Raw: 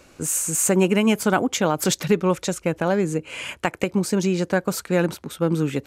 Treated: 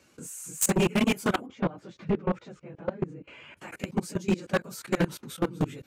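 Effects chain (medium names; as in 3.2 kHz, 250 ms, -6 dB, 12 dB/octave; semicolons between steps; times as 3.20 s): phase randomisation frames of 50 ms; high-pass 100 Hz 12 dB/octave; peaking EQ 670 Hz -4 dB 1.9 oct; level held to a coarse grid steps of 21 dB; wavefolder -17.5 dBFS; 1.46–3.57 s: tape spacing loss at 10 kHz 33 dB; trim +1 dB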